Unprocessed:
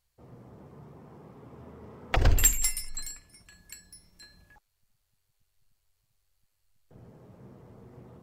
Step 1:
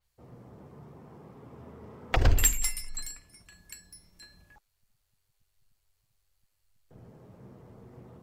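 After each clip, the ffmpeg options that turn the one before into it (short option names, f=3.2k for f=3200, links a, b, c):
-af "adynamicequalizer=threshold=0.00794:dfrequency=4900:dqfactor=0.7:tfrequency=4900:tqfactor=0.7:attack=5:release=100:ratio=0.375:range=2.5:mode=cutabove:tftype=highshelf"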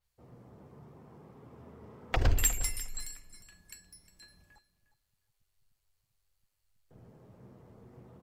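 -af "aecho=1:1:357|714:0.168|0.0252,volume=-4dB"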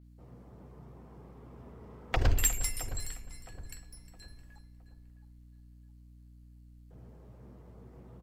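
-filter_complex "[0:a]aeval=exprs='val(0)+0.002*(sin(2*PI*60*n/s)+sin(2*PI*2*60*n/s)/2+sin(2*PI*3*60*n/s)/3+sin(2*PI*4*60*n/s)/4+sin(2*PI*5*60*n/s)/5)':c=same,asplit=2[a][b];[b]adelay=665,lowpass=f=1.8k:p=1,volume=-13dB,asplit=2[c][d];[d]adelay=665,lowpass=f=1.8k:p=1,volume=0.4,asplit=2[e][f];[f]adelay=665,lowpass=f=1.8k:p=1,volume=0.4,asplit=2[g][h];[h]adelay=665,lowpass=f=1.8k:p=1,volume=0.4[i];[a][c][e][g][i]amix=inputs=5:normalize=0"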